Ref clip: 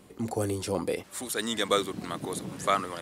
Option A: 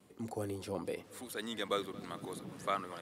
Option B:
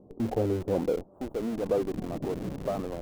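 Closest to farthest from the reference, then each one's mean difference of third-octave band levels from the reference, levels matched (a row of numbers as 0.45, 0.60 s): A, B; 1.5, 6.5 dB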